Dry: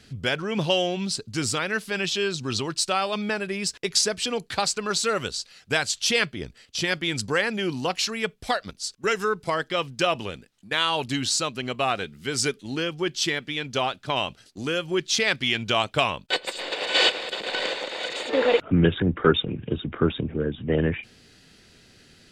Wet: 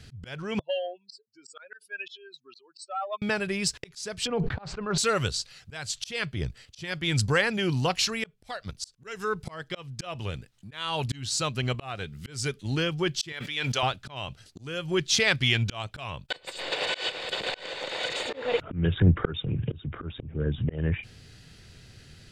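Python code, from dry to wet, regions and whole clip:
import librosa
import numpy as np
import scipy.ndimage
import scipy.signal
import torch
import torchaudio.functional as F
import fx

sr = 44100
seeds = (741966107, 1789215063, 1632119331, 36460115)

y = fx.chain(x, sr, fx.spec_expand(power=2.9),
    fx.highpass(hz=630.0, slope=24),
    fx.transformer_sat(knee_hz=750.0), at=(0.59, 3.22))
y = fx.chain(y, sr, fx.lowpass(hz=1400.0, slope=12),
    fx.sustainer(db_per_s=65.0), at=(4.27, 4.98))
y = fx.chain(y, sr, fx.highpass(hz=800.0, slope=6),
    fx.sustainer(db_per_s=30.0), at=(13.32, 13.83))
y = fx.low_shelf_res(y, sr, hz=170.0, db=8.5, q=1.5)
y = fx.auto_swell(y, sr, attack_ms=390.0)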